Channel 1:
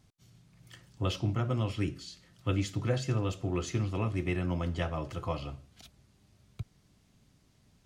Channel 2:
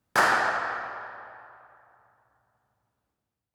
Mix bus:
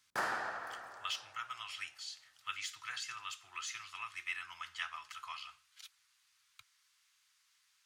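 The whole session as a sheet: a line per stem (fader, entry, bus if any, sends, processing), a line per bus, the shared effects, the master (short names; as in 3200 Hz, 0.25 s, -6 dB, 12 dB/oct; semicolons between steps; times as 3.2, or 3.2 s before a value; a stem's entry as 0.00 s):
+1.0 dB, 0.00 s, no send, inverse Chebyshev high-pass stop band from 600 Hz, stop band 40 dB; de-esser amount 95%
-14.5 dB, 0.00 s, no send, dry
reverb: off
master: dry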